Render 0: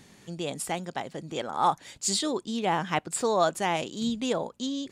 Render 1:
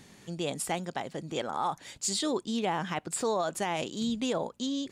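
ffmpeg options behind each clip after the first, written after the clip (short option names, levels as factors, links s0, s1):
-af "alimiter=limit=0.0944:level=0:latency=1:release=69"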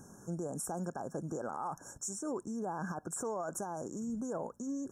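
-af "alimiter=level_in=2:limit=0.0631:level=0:latency=1:release=63,volume=0.501,afftfilt=real='re*(1-between(b*sr/4096,1700,5400))':imag='im*(1-between(b*sr/4096,1700,5400))':win_size=4096:overlap=0.75,volume=1.12"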